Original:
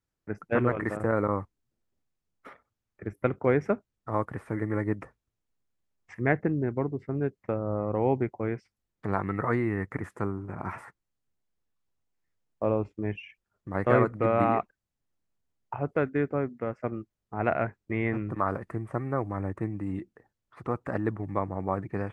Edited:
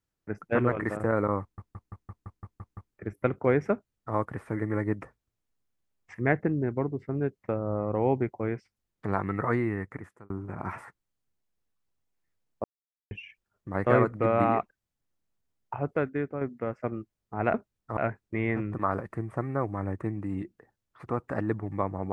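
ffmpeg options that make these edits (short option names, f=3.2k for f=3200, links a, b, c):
-filter_complex "[0:a]asplit=16[a][b][c][d][e][f][g][h][i][j][k][l][m][n][o][p];[a]atrim=end=1.582[q];[b]atrim=start=1.408:end=1.582[r];[c]atrim=start=1.408:end=1.582[s];[d]atrim=start=1.408:end=1.582[t];[e]atrim=start=1.408:end=1.582[u];[f]atrim=start=1.408:end=1.582[v];[g]atrim=start=1.408:end=1.582[w];[h]atrim=start=1.408:end=1.582[x];[i]atrim=start=1.408:end=1.582[y];[j]atrim=start=2.938:end=10.3,asetpts=PTS-STARTPTS,afade=t=out:st=6.682:d=0.68[z];[k]atrim=start=10.3:end=12.64,asetpts=PTS-STARTPTS,afade=t=in:d=0.004:c=hsin,afade=t=out:st=2.336:d=0.004:c=hsin[aa];[l]atrim=start=12.64:end=13.11,asetpts=PTS-STARTPTS,volume=0[ab];[m]atrim=start=13.11:end=16.41,asetpts=PTS-STARTPTS,afade=t=in:d=0.004:c=hsin,afade=t=out:st=2.75:d=0.55:silence=0.473151[ac];[n]atrim=start=16.41:end=17.542,asetpts=PTS-STARTPTS,afade=t=in:d=0.004:c=hsin:silence=0.473151[ad];[o]atrim=start=3.718:end=4.152[ae];[p]atrim=start=17.538[af];[q][r]acrossfade=d=0.004:c1=hsin:c2=hsin[ag];[ag][s]acrossfade=d=0.004:c1=hsin:c2=hsin[ah];[ah][t]acrossfade=d=0.004:c1=hsin:c2=hsin[ai];[ai][u]acrossfade=d=0.004:c1=hsin:c2=hsin[aj];[aj][v]acrossfade=d=0.004:c1=hsin:c2=hsin[ak];[ak][w]acrossfade=d=0.004:c1=hsin:c2=hsin[al];[al][x]acrossfade=d=0.004:c1=hsin:c2=hsin[am];[am][y]acrossfade=d=0.004:c1=hsin:c2=hsin[an];[z][aa][ab][ac][ad]concat=n=5:v=0:a=1[ao];[an][ao]acrossfade=d=0.004:c1=hsin:c2=hsin[ap];[ap][ae]acrossfade=d=0.004:c1=hsin:c2=hsin[aq];[aq][af]acrossfade=d=0.004:c1=hsin:c2=hsin"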